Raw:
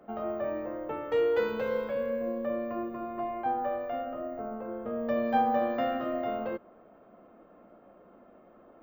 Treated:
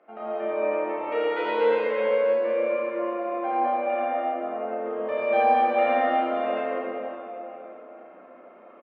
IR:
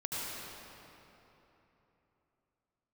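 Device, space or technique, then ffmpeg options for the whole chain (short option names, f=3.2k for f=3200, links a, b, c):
station announcement: -filter_complex "[0:a]asettb=1/sr,asplit=3[a][b][c];[a]atrim=end=2.384[d];[b]atrim=start=2.38:end=2.99,asetpts=PTS-STARTPTS,afade=t=in:d=0.004:c=qsin,afade=t=out:st=0.606:d=0.004:c=qsin,bandreject=f=700:w=12[e];[c]atrim=start=2.986[f];[d][e]acrossfade=d=0.004:c1=hsin:c2=qsin[g];[g][f]acrossfade=d=0.004:c1=qsin:c2=hsin,highpass=410,lowpass=3.6k,equalizer=f=2.3k:t=o:w=0.55:g=8.5,aecho=1:1:32.07|84.55:0.794|0.794[h];[1:a]atrim=start_sample=2205[i];[h][i]afir=irnorm=-1:irlink=0"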